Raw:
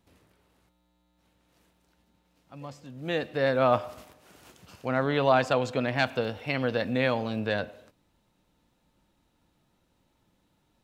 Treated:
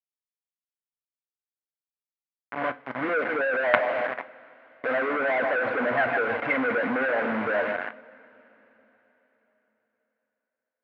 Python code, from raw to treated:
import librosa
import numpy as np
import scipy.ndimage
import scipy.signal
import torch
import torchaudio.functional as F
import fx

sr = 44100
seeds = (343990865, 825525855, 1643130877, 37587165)

p1 = fx.envelope_sharpen(x, sr, power=3.0)
p2 = p1 + fx.echo_feedback(p1, sr, ms=154, feedback_pct=56, wet_db=-13.5, dry=0)
p3 = fx.quant_companded(p2, sr, bits=2)
p4 = fx.rider(p3, sr, range_db=3, speed_s=0.5)
p5 = p3 + (p4 * 10.0 ** (-2.0 / 20.0))
p6 = fx.cabinet(p5, sr, low_hz=250.0, low_slope=12, high_hz=2500.0, hz=(260.0, 370.0, 670.0, 1000.0, 1500.0, 2100.0), db=(8, -6, 4, 5, 10, 7))
p7 = fx.rev_double_slope(p6, sr, seeds[0], early_s=0.26, late_s=4.1, knee_db=-22, drr_db=10.0)
y = p7 * 10.0 ** (-6.0 / 20.0)